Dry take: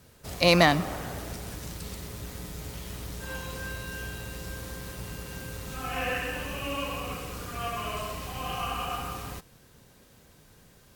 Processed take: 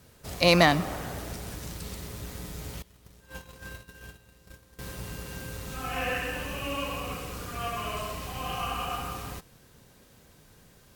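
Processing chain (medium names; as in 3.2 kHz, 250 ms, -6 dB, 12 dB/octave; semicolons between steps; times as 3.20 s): 2.82–4.79 s: gate -34 dBFS, range -20 dB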